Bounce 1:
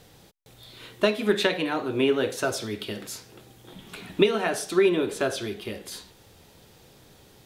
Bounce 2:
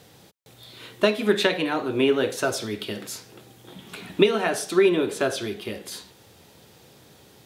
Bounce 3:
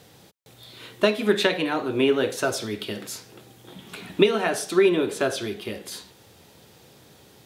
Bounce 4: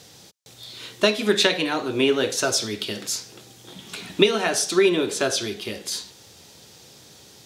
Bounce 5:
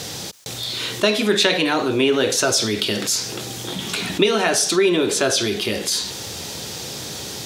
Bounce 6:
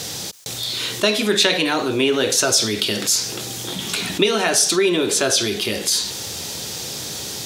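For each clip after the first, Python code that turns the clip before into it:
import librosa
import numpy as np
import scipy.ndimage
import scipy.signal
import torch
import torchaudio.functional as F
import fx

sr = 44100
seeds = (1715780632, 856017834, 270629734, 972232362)

y1 = scipy.signal.sosfilt(scipy.signal.butter(2, 90.0, 'highpass', fs=sr, output='sos'), x)
y1 = F.gain(torch.from_numpy(y1), 2.0).numpy()
y2 = y1
y3 = fx.peak_eq(y2, sr, hz=5800.0, db=11.0, octaves=1.5)
y4 = fx.env_flatten(y3, sr, amount_pct=50)
y4 = F.gain(torch.from_numpy(y4), -1.0).numpy()
y5 = fx.high_shelf(y4, sr, hz=4000.0, db=5.5)
y5 = F.gain(torch.from_numpy(y5), -1.0).numpy()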